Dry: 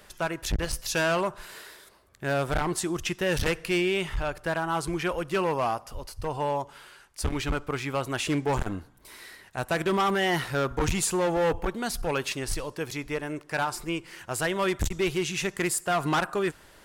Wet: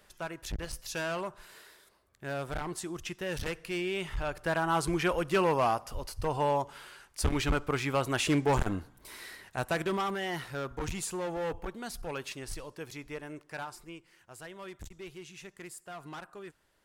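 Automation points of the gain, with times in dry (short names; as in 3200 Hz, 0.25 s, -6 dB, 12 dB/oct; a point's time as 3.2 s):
3.72 s -9 dB
4.68 s 0 dB
9.45 s 0 dB
10.2 s -9.5 dB
13.4 s -9.5 dB
14.18 s -18.5 dB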